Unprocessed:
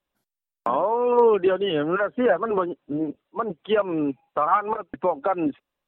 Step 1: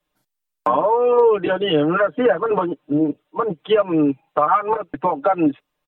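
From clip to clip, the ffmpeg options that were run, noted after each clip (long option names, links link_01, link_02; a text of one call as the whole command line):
ffmpeg -i in.wav -filter_complex "[0:a]aecho=1:1:6.6:0.98,acrossover=split=130[link_01][link_02];[link_02]acompressor=threshold=-17dB:ratio=2.5[link_03];[link_01][link_03]amix=inputs=2:normalize=0,volume=3.5dB" out.wav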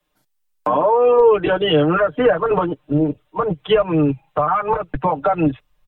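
ffmpeg -i in.wav -filter_complex "[0:a]asubboost=boost=10.5:cutoff=90,acrossover=split=140|540[link_01][link_02][link_03];[link_03]alimiter=limit=-16.5dB:level=0:latency=1:release=16[link_04];[link_01][link_02][link_04]amix=inputs=3:normalize=0,volume=4dB" out.wav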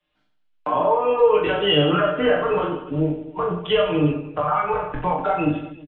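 ffmpeg -i in.wav -filter_complex "[0:a]flanger=delay=18.5:depth=4.6:speed=0.69,lowpass=frequency=3100:width_type=q:width=2.1,asplit=2[link_01][link_02];[link_02]aecho=0:1:40|92|159.6|247.5|361.7:0.631|0.398|0.251|0.158|0.1[link_03];[link_01][link_03]amix=inputs=2:normalize=0,volume=-3dB" out.wav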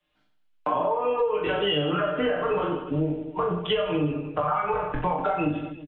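ffmpeg -i in.wav -af "acompressor=threshold=-21dB:ratio=10" out.wav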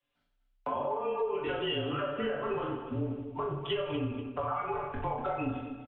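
ffmpeg -i in.wav -af "afreqshift=-32,aecho=1:1:243|486|729:0.251|0.0728|0.0211,volume=-8dB" out.wav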